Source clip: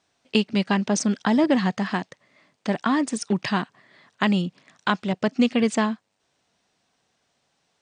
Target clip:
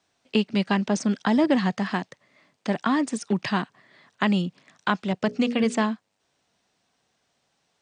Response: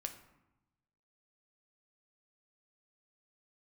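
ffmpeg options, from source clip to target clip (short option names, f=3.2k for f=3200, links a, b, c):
-filter_complex "[0:a]asettb=1/sr,asplit=3[a][b][c];[a]atrim=end=5.254[d];[b]atrim=start=5.25:end=5.84,asetpts=PTS-STARTPTS,afade=t=in:d=0.004:c=qsin,afade=t=out:st=0.586:d=0.004:c=qsin,bandreject=f=60:t=h:w=6,bandreject=f=120:t=h:w=6,bandreject=f=180:t=h:w=6,bandreject=f=240:t=h:w=6,bandreject=f=300:t=h:w=6,bandreject=f=360:t=h:w=6,bandreject=f=420:t=h:w=6,bandreject=f=480:t=h:w=6,bandreject=f=540:t=h:w=6,bandreject=f=600:t=h:w=6[e];[c]atrim=start=5.836[f];[d][e]acrossfade=d=0.004:c1=hsin:c2=qsin[g];[g][f]acrossfade=d=0.004:c1=qsin:c2=hsin,acrossover=split=110|770|2800[h][i][j][k];[k]alimiter=limit=-24dB:level=0:latency=1:release=83[l];[h][i][j][l]amix=inputs=4:normalize=0,volume=-1dB"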